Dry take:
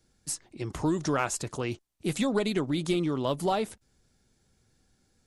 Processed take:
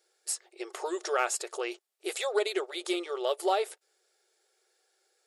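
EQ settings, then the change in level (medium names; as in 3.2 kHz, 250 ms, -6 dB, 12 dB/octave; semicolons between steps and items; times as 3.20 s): brick-wall FIR high-pass 350 Hz; Butterworth band-stop 1 kHz, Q 8; band-stop 6.1 kHz, Q 14; +1.0 dB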